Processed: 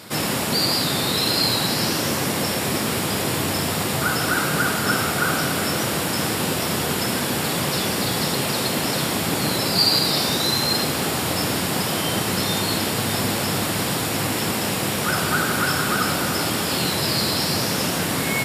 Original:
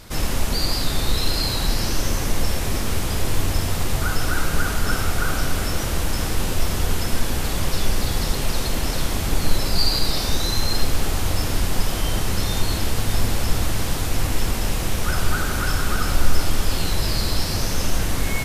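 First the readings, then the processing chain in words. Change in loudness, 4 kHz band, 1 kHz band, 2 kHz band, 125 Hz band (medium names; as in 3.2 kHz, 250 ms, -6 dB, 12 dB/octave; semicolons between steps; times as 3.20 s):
+3.0 dB, +5.0 dB, +5.0 dB, +5.0 dB, -2.5 dB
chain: high-pass 130 Hz 24 dB/octave; band-stop 6.2 kHz, Q 7.3; trim +5 dB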